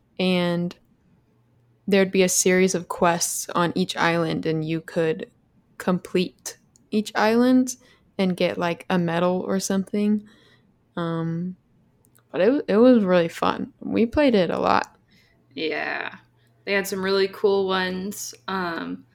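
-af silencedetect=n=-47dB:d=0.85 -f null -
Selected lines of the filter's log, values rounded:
silence_start: 0.77
silence_end: 1.87 | silence_duration: 1.10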